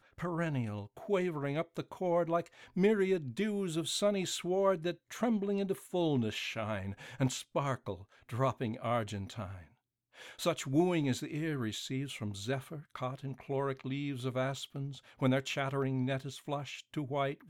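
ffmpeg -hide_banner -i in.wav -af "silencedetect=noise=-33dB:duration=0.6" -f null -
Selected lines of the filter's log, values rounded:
silence_start: 9.44
silence_end: 10.42 | silence_duration: 0.98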